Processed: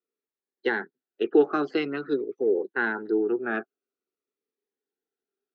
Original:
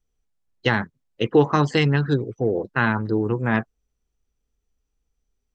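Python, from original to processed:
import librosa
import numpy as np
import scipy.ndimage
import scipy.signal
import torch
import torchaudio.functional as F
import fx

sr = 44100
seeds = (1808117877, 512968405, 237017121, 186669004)

y = fx.cabinet(x, sr, low_hz=290.0, low_slope=24, high_hz=3700.0, hz=(390.0, 560.0, 1000.0, 1400.0, 2200.0, 3100.0), db=(9, -4, -8, 6, -4, -8))
y = fx.notch_cascade(y, sr, direction='falling', hz=0.48)
y = y * librosa.db_to_amplitude(-3.0)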